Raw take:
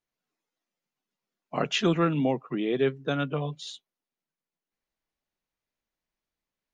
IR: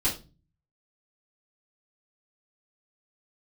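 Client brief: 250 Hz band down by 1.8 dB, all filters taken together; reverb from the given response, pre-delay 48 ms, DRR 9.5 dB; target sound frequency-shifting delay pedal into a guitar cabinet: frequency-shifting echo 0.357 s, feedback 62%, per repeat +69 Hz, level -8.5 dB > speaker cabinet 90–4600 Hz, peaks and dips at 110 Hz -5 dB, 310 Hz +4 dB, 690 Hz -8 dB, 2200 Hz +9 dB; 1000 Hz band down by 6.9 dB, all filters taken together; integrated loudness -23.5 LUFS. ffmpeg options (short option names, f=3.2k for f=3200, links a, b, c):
-filter_complex "[0:a]equalizer=f=250:t=o:g=-4.5,equalizer=f=1k:t=o:g=-8.5,asplit=2[a][b];[1:a]atrim=start_sample=2205,adelay=48[c];[b][c]afir=irnorm=-1:irlink=0,volume=-18dB[d];[a][d]amix=inputs=2:normalize=0,asplit=9[e][f][g][h][i][j][k][l][m];[f]adelay=357,afreqshift=69,volume=-8.5dB[n];[g]adelay=714,afreqshift=138,volume=-12.7dB[o];[h]adelay=1071,afreqshift=207,volume=-16.8dB[p];[i]adelay=1428,afreqshift=276,volume=-21dB[q];[j]adelay=1785,afreqshift=345,volume=-25.1dB[r];[k]adelay=2142,afreqshift=414,volume=-29.3dB[s];[l]adelay=2499,afreqshift=483,volume=-33.4dB[t];[m]adelay=2856,afreqshift=552,volume=-37.6dB[u];[e][n][o][p][q][r][s][t][u]amix=inputs=9:normalize=0,highpass=90,equalizer=f=110:t=q:w=4:g=-5,equalizer=f=310:t=q:w=4:g=4,equalizer=f=690:t=q:w=4:g=-8,equalizer=f=2.2k:t=q:w=4:g=9,lowpass=f=4.6k:w=0.5412,lowpass=f=4.6k:w=1.3066,volume=5dB"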